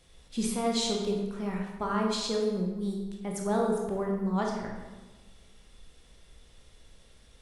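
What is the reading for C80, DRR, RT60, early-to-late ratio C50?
5.0 dB, −0.5 dB, 1.2 s, 3.0 dB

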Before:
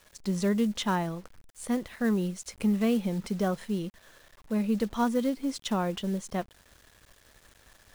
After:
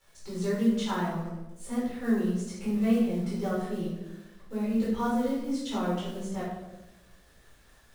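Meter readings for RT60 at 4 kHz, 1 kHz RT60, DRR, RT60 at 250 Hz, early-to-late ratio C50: 0.65 s, 0.90 s, −8.5 dB, 1.4 s, 1.0 dB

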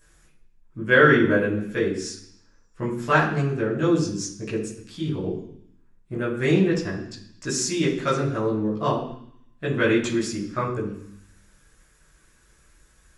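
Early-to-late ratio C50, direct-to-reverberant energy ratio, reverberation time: 6.0 dB, −7.0 dB, 0.65 s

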